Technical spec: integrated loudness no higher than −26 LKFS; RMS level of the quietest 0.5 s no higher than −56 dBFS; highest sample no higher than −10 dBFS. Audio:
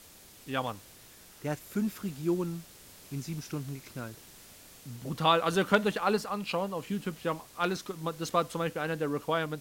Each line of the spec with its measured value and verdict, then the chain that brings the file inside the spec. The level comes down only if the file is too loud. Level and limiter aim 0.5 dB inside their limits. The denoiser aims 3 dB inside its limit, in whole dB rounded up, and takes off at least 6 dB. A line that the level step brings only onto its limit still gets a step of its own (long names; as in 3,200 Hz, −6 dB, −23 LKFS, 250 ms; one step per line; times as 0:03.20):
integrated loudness −32.0 LKFS: in spec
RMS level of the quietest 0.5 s −54 dBFS: out of spec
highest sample −9.5 dBFS: out of spec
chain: broadband denoise 6 dB, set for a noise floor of −54 dBFS
brickwall limiter −10.5 dBFS